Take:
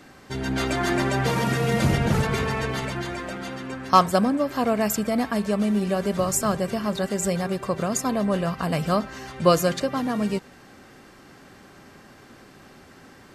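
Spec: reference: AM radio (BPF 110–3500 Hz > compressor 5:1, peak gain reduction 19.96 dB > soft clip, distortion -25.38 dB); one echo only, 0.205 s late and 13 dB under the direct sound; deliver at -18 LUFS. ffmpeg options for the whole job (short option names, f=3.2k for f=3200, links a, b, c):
-af "highpass=110,lowpass=3.5k,aecho=1:1:205:0.224,acompressor=threshold=-33dB:ratio=5,asoftclip=threshold=-23dB,volume=18.5dB"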